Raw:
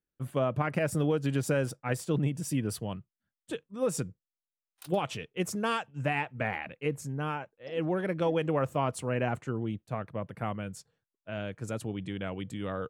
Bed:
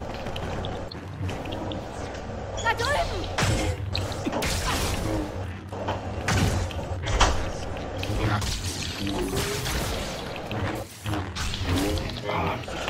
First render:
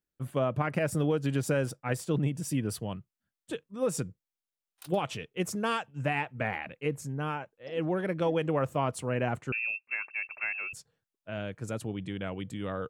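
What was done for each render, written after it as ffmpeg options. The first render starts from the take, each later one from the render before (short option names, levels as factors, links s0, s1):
-filter_complex "[0:a]asettb=1/sr,asplit=3[s0][s1][s2];[s0]atrim=end=9.524[s3];[s1]atrim=start=9.52:end=10.73,asetpts=PTS-STARTPTS,afade=t=in:d=0.004:c=qsin,afade=t=out:st=1.206:d=0.004:c=qsin,lowpass=f=2400:t=q:w=0.5098,lowpass=f=2400:t=q:w=0.6013,lowpass=f=2400:t=q:w=0.9,lowpass=f=2400:t=q:w=2.563,afreqshift=-2800[s4];[s2]atrim=start=10.726[s5];[s3][s4]acrossfade=d=0.004:c1=hsin:c2=qsin[s6];[s6][s5]acrossfade=d=0.004:c1=qsin:c2=hsin"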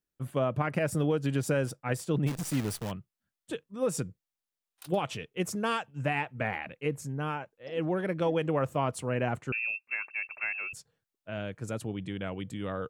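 -filter_complex "[0:a]asplit=3[s0][s1][s2];[s0]afade=t=out:st=2.26:d=0.02[s3];[s1]acrusher=bits=7:dc=4:mix=0:aa=0.000001,afade=t=in:st=2.26:d=0.02,afade=t=out:st=2.9:d=0.02[s4];[s2]afade=t=in:st=2.9:d=0.02[s5];[s3][s4][s5]amix=inputs=3:normalize=0"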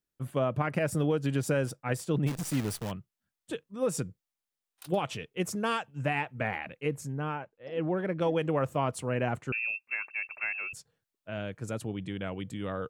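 -filter_complex "[0:a]asettb=1/sr,asplit=3[s0][s1][s2];[s0]atrim=end=7.194[s3];[s1]atrim=start=7.19:end=8.21,asetpts=PTS-STARTPTS,afade=t=in:d=0.004:c=qsin,afade=t=out:st=1.016:d=0.004:c=qsin,lowpass=f=2500:p=1[s4];[s2]atrim=start=8.206[s5];[s3][s4]acrossfade=d=0.004:c1=hsin:c2=qsin[s6];[s6][s5]acrossfade=d=0.004:c1=qsin:c2=hsin"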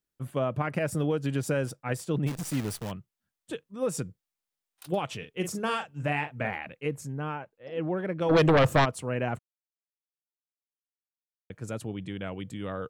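-filter_complex "[0:a]asettb=1/sr,asplit=3[s0][s1][s2];[s0]atrim=end=5.184[s3];[s1]atrim=start=5.18:end=6.5,asetpts=PTS-STARTPTS,afade=t=in:d=0.004:c=qsin,afade=t=out:st=1.316:d=0.004:c=qsin,asplit=2[s4][s5];[s5]adelay=41,volume=0.398[s6];[s4][s6]amix=inputs=2:normalize=0,atrim=end_sample=58212[s7];[s2]atrim=start=6.496[s8];[s3][s7]acrossfade=d=0.004:c1=hsin:c2=qsin[s9];[s9][s8]acrossfade=d=0.004:c1=qsin:c2=hsin,asplit=3[s10][s11][s12];[s10]afade=t=out:st=8.29:d=0.02[s13];[s11]aeval=exprs='0.158*sin(PI/2*2.82*val(0)/0.158)':c=same,afade=t=in:st=8.29:d=0.02,afade=t=out:st=8.84:d=0.02[s14];[s12]afade=t=in:st=8.84:d=0.02[s15];[s13][s14][s15]amix=inputs=3:normalize=0,asplit=3[s16][s17][s18];[s16]atrim=end=9.39,asetpts=PTS-STARTPTS,afade=t=out:st=9.386:d=0.004:c=hsin[s19];[s17]atrim=start=9.39:end=11.5,asetpts=PTS-STARTPTS,volume=0[s20];[s18]atrim=start=11.5,asetpts=PTS-STARTPTS,afade=t=in:d=0.004:c=hsin[s21];[s19][s20][s21]concat=n=3:v=0:a=1"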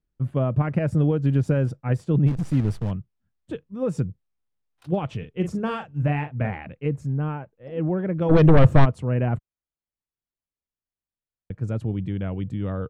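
-af "aemphasis=mode=reproduction:type=riaa"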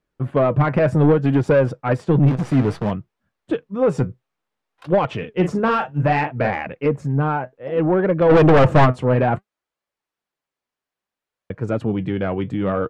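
-filter_complex "[0:a]flanger=delay=1.7:depth=6.4:regen=66:speed=0.61:shape=sinusoidal,asplit=2[s0][s1];[s1]highpass=f=720:p=1,volume=25.1,asoftclip=type=tanh:threshold=0.668[s2];[s0][s2]amix=inputs=2:normalize=0,lowpass=f=1300:p=1,volume=0.501"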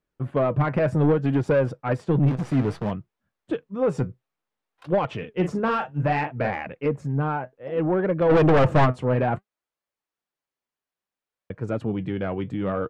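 -af "volume=0.562"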